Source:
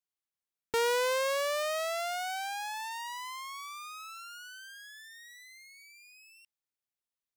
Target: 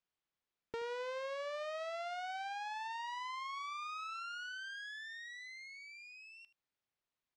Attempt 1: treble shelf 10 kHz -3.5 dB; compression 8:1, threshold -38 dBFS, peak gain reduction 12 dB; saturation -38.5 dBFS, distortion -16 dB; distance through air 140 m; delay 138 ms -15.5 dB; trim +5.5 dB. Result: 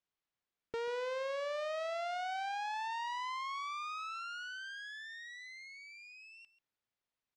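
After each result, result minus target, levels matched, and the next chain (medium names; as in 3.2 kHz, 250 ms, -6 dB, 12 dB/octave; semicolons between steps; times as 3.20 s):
echo 61 ms late; compression: peak gain reduction -5.5 dB
treble shelf 10 kHz -3.5 dB; compression 8:1, threshold -38 dBFS, peak gain reduction 12 dB; saturation -38.5 dBFS, distortion -16 dB; distance through air 140 m; delay 77 ms -15.5 dB; trim +5.5 dB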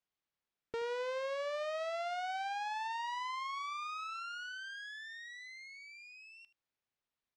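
compression: peak gain reduction -5.5 dB
treble shelf 10 kHz -3.5 dB; compression 8:1, threshold -44 dBFS, peak gain reduction 17 dB; saturation -38.5 dBFS, distortion -22 dB; distance through air 140 m; delay 77 ms -15.5 dB; trim +5.5 dB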